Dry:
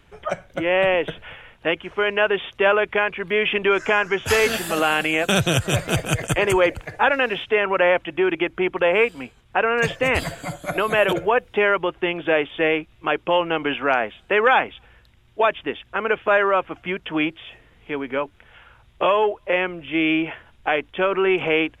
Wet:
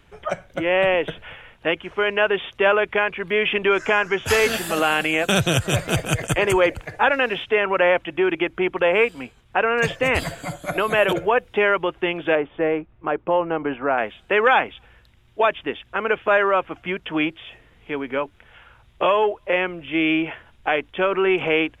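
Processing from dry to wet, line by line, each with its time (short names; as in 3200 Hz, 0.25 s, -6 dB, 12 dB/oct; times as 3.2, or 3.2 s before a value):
12.35–13.98 LPF 1300 Hz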